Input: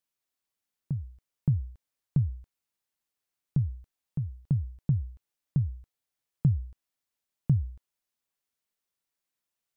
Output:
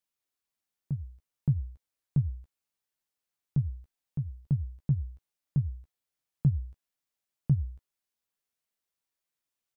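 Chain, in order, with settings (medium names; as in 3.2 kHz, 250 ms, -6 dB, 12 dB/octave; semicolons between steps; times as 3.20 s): doubling 14 ms -8 dB; trim -2.5 dB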